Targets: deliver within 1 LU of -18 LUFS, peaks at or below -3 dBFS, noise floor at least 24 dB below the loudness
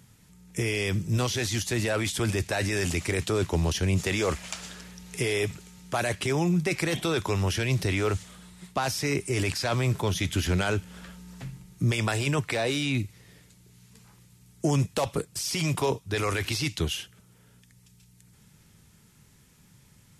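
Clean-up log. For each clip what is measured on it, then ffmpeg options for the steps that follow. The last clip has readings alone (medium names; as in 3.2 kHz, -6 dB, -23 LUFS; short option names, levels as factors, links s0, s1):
loudness -27.5 LUFS; peak level -13.5 dBFS; loudness target -18.0 LUFS
-> -af "volume=2.99"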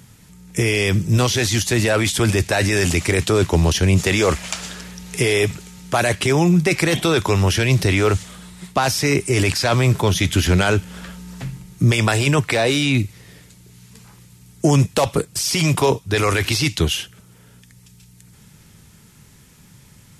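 loudness -18.0 LUFS; peak level -4.0 dBFS; noise floor -49 dBFS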